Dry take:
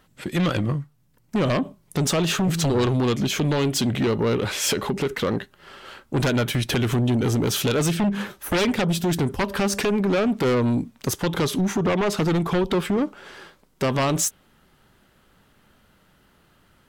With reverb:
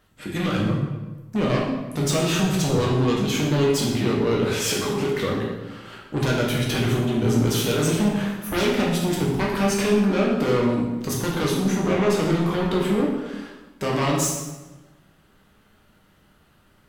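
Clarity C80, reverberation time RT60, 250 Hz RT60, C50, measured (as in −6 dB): 4.5 dB, 1.1 s, 1.3 s, 2.0 dB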